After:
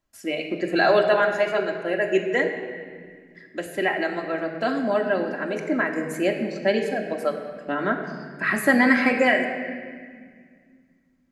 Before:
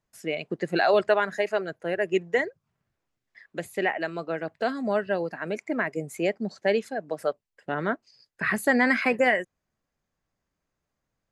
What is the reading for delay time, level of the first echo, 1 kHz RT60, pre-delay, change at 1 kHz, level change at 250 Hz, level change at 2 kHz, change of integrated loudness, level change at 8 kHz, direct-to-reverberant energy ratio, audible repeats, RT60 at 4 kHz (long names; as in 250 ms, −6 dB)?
no echo audible, no echo audible, 1.7 s, 3 ms, +3.0 dB, +5.5 dB, +4.0 dB, +3.5 dB, +3.0 dB, 1.0 dB, no echo audible, 1.4 s